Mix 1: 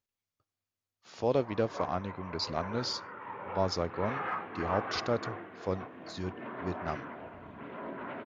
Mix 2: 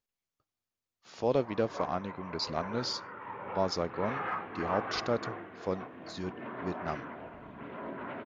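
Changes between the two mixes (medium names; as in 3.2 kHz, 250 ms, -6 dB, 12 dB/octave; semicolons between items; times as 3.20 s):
speech: add peaking EQ 92 Hz -10 dB 0.57 oct; master: add bass shelf 70 Hz +7.5 dB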